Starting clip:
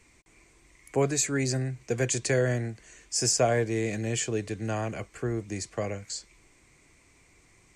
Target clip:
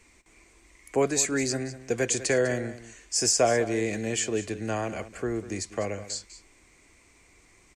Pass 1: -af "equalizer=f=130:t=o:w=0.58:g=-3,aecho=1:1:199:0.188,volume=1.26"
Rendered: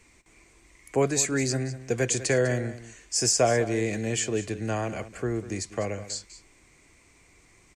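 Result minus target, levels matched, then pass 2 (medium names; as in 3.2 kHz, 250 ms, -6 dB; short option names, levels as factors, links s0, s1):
125 Hz band +5.0 dB
-af "equalizer=f=130:t=o:w=0.58:g=-10,aecho=1:1:199:0.188,volume=1.26"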